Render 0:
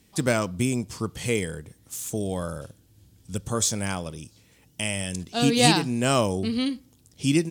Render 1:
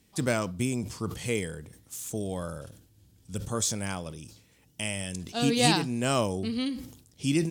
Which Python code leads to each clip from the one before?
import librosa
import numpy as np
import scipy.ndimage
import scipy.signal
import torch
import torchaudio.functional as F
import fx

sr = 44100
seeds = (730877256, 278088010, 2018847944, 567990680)

y = fx.sustainer(x, sr, db_per_s=85.0)
y = y * librosa.db_to_amplitude(-4.5)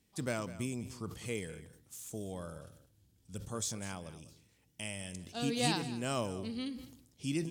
y = x + 10.0 ** (-15.5 / 20.0) * np.pad(x, (int(201 * sr / 1000.0), 0))[:len(x)]
y = y * librosa.db_to_amplitude(-9.0)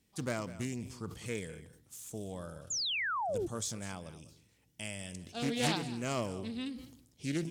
y = fx.spec_paint(x, sr, seeds[0], shape='fall', start_s=2.7, length_s=0.77, low_hz=320.0, high_hz=7400.0, level_db=-34.0)
y = fx.doppler_dist(y, sr, depth_ms=0.32)